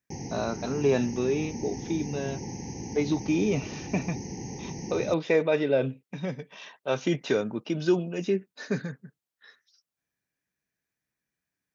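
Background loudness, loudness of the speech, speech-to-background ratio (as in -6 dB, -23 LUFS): -37.5 LUFS, -29.0 LUFS, 8.5 dB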